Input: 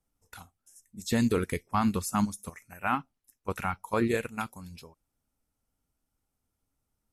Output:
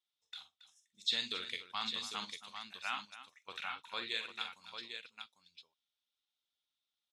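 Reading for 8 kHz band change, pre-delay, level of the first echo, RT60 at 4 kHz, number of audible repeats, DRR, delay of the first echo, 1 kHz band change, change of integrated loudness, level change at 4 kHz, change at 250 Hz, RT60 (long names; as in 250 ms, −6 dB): −12.0 dB, no reverb audible, −9.5 dB, no reverb audible, 3, no reverb audible, 45 ms, −12.5 dB, −9.5 dB, +8.0 dB, −26.5 dB, no reverb audible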